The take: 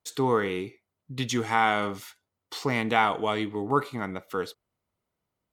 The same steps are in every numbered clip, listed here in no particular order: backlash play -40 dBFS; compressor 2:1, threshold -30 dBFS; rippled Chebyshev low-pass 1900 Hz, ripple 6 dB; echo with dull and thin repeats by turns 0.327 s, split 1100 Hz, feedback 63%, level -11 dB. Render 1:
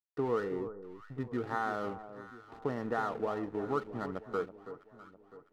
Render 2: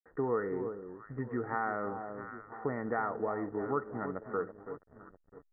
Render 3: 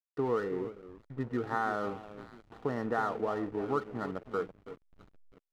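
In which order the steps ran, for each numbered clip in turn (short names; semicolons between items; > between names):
compressor > rippled Chebyshev low-pass > backlash > echo with dull and thin repeats by turns; echo with dull and thin repeats by turns > compressor > backlash > rippled Chebyshev low-pass; rippled Chebyshev low-pass > compressor > echo with dull and thin repeats by turns > backlash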